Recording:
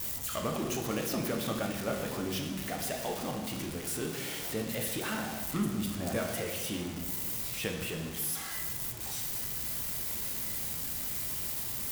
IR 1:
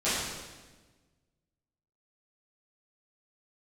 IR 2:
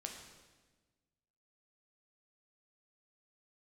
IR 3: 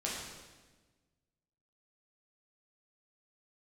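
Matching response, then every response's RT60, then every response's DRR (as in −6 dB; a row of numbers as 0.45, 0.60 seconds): 2; 1.3, 1.3, 1.3 seconds; −14.0, 1.5, −5.5 decibels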